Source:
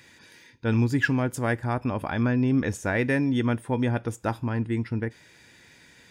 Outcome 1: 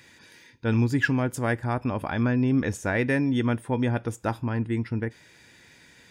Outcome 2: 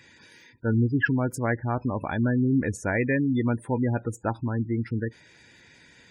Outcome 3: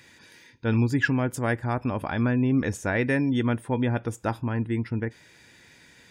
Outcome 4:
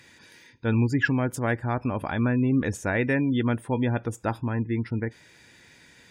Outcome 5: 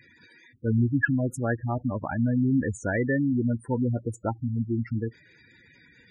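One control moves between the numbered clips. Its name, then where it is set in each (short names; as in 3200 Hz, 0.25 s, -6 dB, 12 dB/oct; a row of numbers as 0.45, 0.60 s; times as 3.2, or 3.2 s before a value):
spectral gate, under each frame's peak: -60, -20, -45, -35, -10 dB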